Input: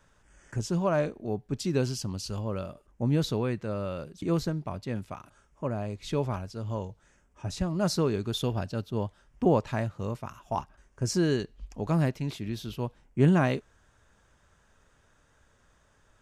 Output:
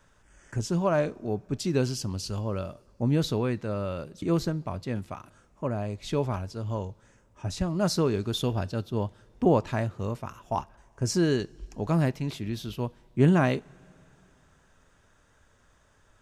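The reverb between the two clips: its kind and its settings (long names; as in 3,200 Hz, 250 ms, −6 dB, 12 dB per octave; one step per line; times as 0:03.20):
coupled-rooms reverb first 0.2 s, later 3.1 s, from −21 dB, DRR 18 dB
level +1.5 dB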